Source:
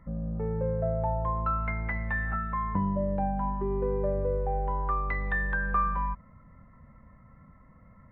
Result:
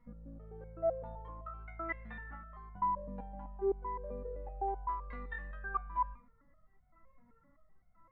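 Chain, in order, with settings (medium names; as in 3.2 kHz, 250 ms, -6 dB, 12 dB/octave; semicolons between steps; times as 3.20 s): reverberation RT60 0.40 s, pre-delay 6 ms, DRR 13 dB; resonator arpeggio 7.8 Hz 240–740 Hz; trim +6 dB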